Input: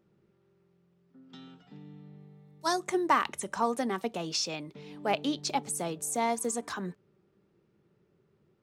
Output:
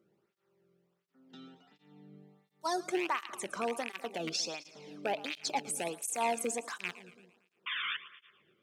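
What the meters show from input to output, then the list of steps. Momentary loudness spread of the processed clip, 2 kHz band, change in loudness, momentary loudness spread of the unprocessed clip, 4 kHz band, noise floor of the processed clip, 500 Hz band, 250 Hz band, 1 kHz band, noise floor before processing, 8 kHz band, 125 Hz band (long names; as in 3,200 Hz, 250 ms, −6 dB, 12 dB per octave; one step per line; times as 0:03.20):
14 LU, −0.5 dB, −4.5 dB, 23 LU, −1.5 dB, −80 dBFS, −3.5 dB, −7.5 dB, −5.5 dB, −70 dBFS, −3.0 dB, −10.0 dB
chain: loose part that buzzes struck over −39 dBFS, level −21 dBFS
brickwall limiter −20 dBFS, peak gain reduction 8 dB
sound drawn into the spectrogram noise, 0:07.66–0:07.97, 1,000–3,600 Hz −33 dBFS
echo with a time of its own for lows and highs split 580 Hz, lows 199 ms, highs 113 ms, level −16 dB
through-zero flanger with one copy inverted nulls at 1.4 Hz, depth 1.2 ms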